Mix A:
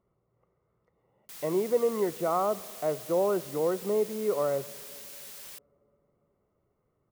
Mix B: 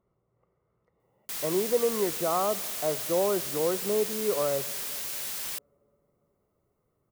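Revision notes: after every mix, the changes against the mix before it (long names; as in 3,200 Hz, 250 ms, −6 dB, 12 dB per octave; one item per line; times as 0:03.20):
background +10.5 dB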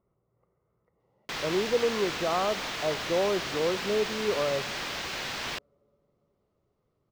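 background +11.5 dB
master: add high-frequency loss of the air 210 metres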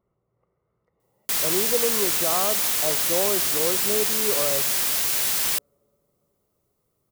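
master: remove high-frequency loss of the air 210 metres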